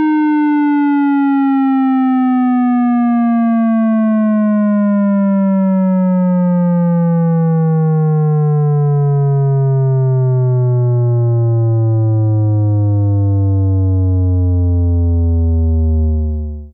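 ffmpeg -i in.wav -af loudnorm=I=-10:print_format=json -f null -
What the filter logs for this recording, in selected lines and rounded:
"input_i" : "-13.5",
"input_tp" : "-11.2",
"input_lra" : "2.1",
"input_thresh" : "-23.5",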